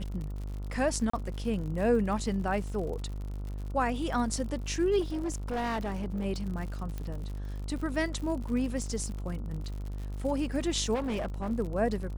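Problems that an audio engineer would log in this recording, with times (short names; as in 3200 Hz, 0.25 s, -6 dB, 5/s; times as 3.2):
buzz 50 Hz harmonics 29 -36 dBFS
crackle 81/s -38 dBFS
1.1–1.13 gap 34 ms
5–6.26 clipped -28.5 dBFS
6.98 pop -24 dBFS
10.94–11.52 clipped -28.5 dBFS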